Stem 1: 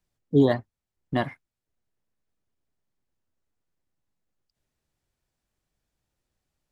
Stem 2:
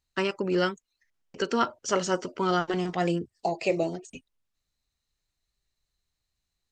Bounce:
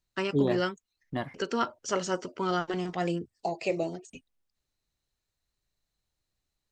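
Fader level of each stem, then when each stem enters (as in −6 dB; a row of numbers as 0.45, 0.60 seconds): −7.5, −3.5 decibels; 0.00, 0.00 seconds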